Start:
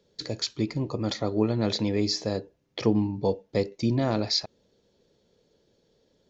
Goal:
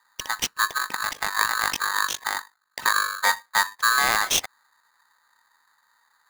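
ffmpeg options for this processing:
-filter_complex "[0:a]asettb=1/sr,asplit=3[a][b][c];[a]atrim=end=0.784[d];[b]atrim=start=0.78:end=3.23,asetpts=PTS-STARTPTS,afade=t=in:d=0.004:c=qsin,afade=t=out:st=2.446:d=0.004:c=qsin,tremolo=f=49:d=0.75[e];[c]atrim=start=3.226[f];[d][e]acrossfade=d=0.004:c1=hsin:c2=qsin[g];[g][f]acrossfade=d=0.004:c1=qsin:c2=hsin,adynamicsmooth=sensitivity=7.5:basefreq=850,aeval=exprs='val(0)*sgn(sin(2*PI*1400*n/s))':c=same,volume=4dB"

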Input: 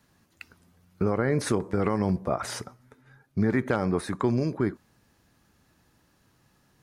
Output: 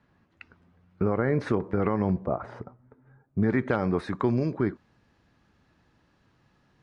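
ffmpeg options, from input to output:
-af "asetnsamples=n=441:p=0,asendcmd='2.26 lowpass f 1000;3.43 lowpass f 3800',lowpass=2.4k"

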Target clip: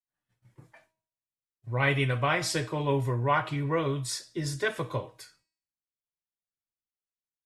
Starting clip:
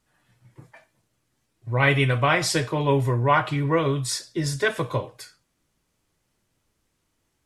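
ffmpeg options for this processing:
-af "agate=range=-33dB:threshold=-54dB:ratio=3:detection=peak,bandreject=f=319.9:t=h:w=4,bandreject=f=639.8:t=h:w=4,bandreject=f=959.7:t=h:w=4,bandreject=f=1.2796k:t=h:w=4,bandreject=f=1.5995k:t=h:w=4,bandreject=f=1.9194k:t=h:w=4,bandreject=f=2.2393k:t=h:w=4,bandreject=f=2.5592k:t=h:w=4,bandreject=f=2.8791k:t=h:w=4,bandreject=f=3.199k:t=h:w=4,bandreject=f=3.5189k:t=h:w=4,bandreject=f=3.8388k:t=h:w=4,bandreject=f=4.1587k:t=h:w=4,bandreject=f=4.4786k:t=h:w=4,bandreject=f=4.7985k:t=h:w=4,bandreject=f=5.1184k:t=h:w=4,bandreject=f=5.4383k:t=h:w=4,bandreject=f=5.7582k:t=h:w=4,bandreject=f=6.0781k:t=h:w=4,bandreject=f=6.398k:t=h:w=4,bandreject=f=6.7179k:t=h:w=4,bandreject=f=7.0378k:t=h:w=4,bandreject=f=7.3577k:t=h:w=4,bandreject=f=7.6776k:t=h:w=4,bandreject=f=7.9975k:t=h:w=4,bandreject=f=8.3174k:t=h:w=4,bandreject=f=8.6373k:t=h:w=4,volume=-6dB"

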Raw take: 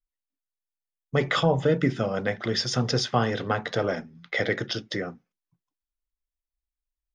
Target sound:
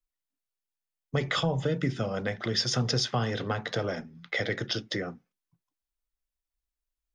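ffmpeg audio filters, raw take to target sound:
-filter_complex "[0:a]acrossover=split=140|3000[a][b][c];[b]acompressor=threshold=-30dB:ratio=2.5[d];[a][d][c]amix=inputs=3:normalize=0"

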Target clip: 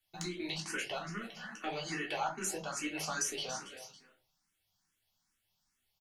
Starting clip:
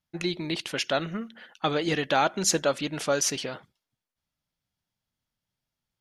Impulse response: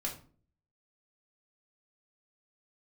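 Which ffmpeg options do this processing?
-filter_complex "[0:a]asettb=1/sr,asplit=3[a][b][c];[a]atrim=end=0.524[d];[b]atrim=start=0.52:end=3.1,asetpts=PTS-STARTPTS,afade=t=in:d=0.004:c=qsin,afade=t=out:st=2.576:d=0.004:c=qsin,equalizer=f=3.6k:t=o:w=0.31:g=-14[e];[c]atrim=start=3.096[f];[d][e]acrossfade=d=0.004:c1=hsin:c2=qsin[g];[g][f]acrossfade=d=0.004:c1=qsin:c2=hsin,aecho=1:1:279|558:0.0944|0.0283,acrossover=split=110|1200[h][i][j];[h]acompressor=threshold=-59dB:ratio=4[k];[i]acompressor=threshold=-40dB:ratio=4[l];[j]acompressor=threshold=-46dB:ratio=4[m];[k][l][m]amix=inputs=3:normalize=0,asoftclip=type=tanh:threshold=-25.5dB,firequalizer=gain_entry='entry(300,0);entry(880,8);entry(6600,14)':delay=0.05:min_phase=1[n];[1:a]atrim=start_sample=2205,asetrate=57330,aresample=44100[o];[n][o]afir=irnorm=-1:irlink=0,asplit=2[p][q];[q]afreqshift=2.4[r];[p][r]amix=inputs=2:normalize=1"

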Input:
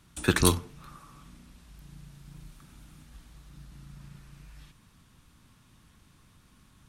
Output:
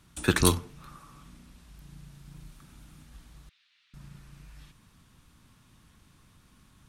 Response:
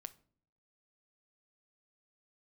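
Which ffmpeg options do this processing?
-filter_complex "[0:a]asettb=1/sr,asplit=3[a][b][c];[a]atrim=end=3.494[d];[b]atrim=start=3.49:end=3.94,asetpts=PTS-STARTPTS,afade=t=in:d=0.004:c=qsin,afade=t=out:st=0.446:d=0.004:c=qsin,asuperpass=centerf=2900:order=4:qfactor=1.3[e];[c]atrim=start=3.936[f];[d][e]acrossfade=d=0.004:c1=hsin:c2=qsin[g];[g][f]acrossfade=d=0.004:c1=qsin:c2=hsin"

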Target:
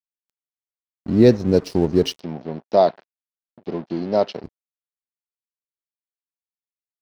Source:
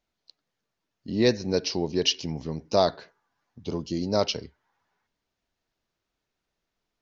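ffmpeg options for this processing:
-filter_complex "[0:a]tiltshelf=f=900:g=8,aeval=exprs='sgn(val(0))*max(abs(val(0))-0.01,0)':c=same,asettb=1/sr,asplit=3[a][b][c];[a]atrim=end=2.204[d];[b]atrim=start=2.2:end=4.44,asetpts=PTS-STARTPTS,afade=t=in:d=0.004:c=qsin,afade=t=out:st=2.236:d=0.004:c=qsin,highpass=280,equalizer=f=290:t=q:w=4:g=-6,equalizer=f=460:t=q:w=4:g=-4,equalizer=f=690:t=q:w=4:g=3,equalizer=f=1.2k:t=q:w=4:g=-3,lowpass=f=4.7k:w=0.5412,lowpass=f=4.7k:w=1.3066[e];[c]atrim=start=4.436[f];[d][e]acrossfade=d=0.004:c1=hsin:c2=qsin[g];[g][f]acrossfade=d=0.004:c1=qsin:c2=hsin,volume=4dB"

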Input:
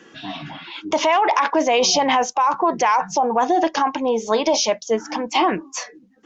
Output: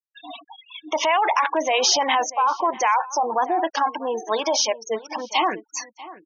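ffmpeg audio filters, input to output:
-filter_complex "[0:a]highpass=f=770:p=1,afftfilt=real='re*gte(hypot(re,im),0.0562)':imag='im*gte(hypot(re,im),0.0562)':win_size=1024:overlap=0.75,asplit=2[a][b];[b]adelay=641.4,volume=-17dB,highshelf=f=4k:g=-14.4[c];[a][c]amix=inputs=2:normalize=0"

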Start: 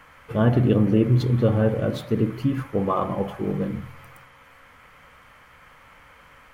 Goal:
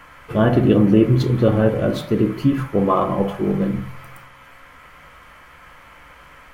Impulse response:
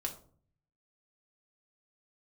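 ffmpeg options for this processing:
-filter_complex "[0:a]asplit=2[a][b];[1:a]atrim=start_sample=2205,atrim=end_sample=3528[c];[b][c]afir=irnorm=-1:irlink=0,volume=1.5dB[d];[a][d]amix=inputs=2:normalize=0,volume=-1dB"

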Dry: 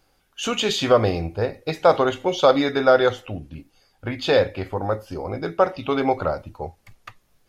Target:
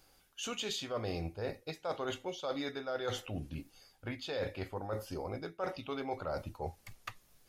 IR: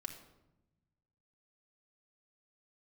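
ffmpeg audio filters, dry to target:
-af "highshelf=f=4k:g=8,areverse,acompressor=threshold=-31dB:ratio=8,areverse,volume=-4dB"

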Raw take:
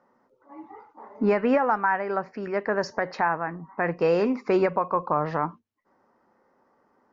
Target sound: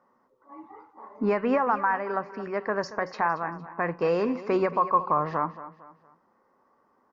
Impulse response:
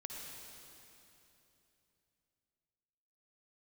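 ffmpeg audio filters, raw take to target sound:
-filter_complex "[0:a]equalizer=f=1.1k:w=7.8:g=9.5,asplit=2[a][b];[b]aecho=0:1:229|458|687:0.178|0.0676|0.0257[c];[a][c]amix=inputs=2:normalize=0,volume=-3dB"

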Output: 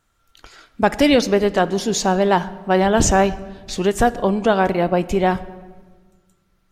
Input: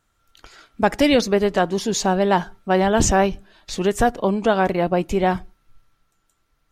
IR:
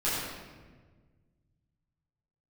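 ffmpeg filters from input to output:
-filter_complex "[0:a]asplit=2[a][b];[1:a]atrim=start_sample=2205,adelay=17[c];[b][c]afir=irnorm=-1:irlink=0,volume=-26dB[d];[a][d]amix=inputs=2:normalize=0,volume=1.5dB"

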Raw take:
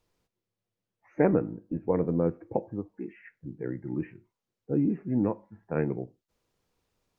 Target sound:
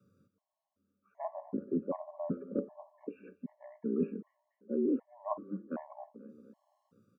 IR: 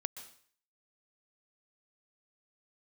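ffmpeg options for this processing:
-af "afreqshift=90,equalizer=f=200:w=1.4:g=10.5,areverse,acompressor=threshold=-31dB:ratio=12,areverse,highshelf=f=1.6k:t=q:w=3:g=-7.5,aecho=1:1:239|478|717|956:0.0891|0.0499|0.0279|0.0157,afftfilt=real='re*gt(sin(2*PI*1.3*pts/sr)*(1-2*mod(floor(b*sr/1024/560),2)),0)':imag='im*gt(sin(2*PI*1.3*pts/sr)*(1-2*mod(floor(b*sr/1024/560),2)),0)':win_size=1024:overlap=0.75,volume=3.5dB"

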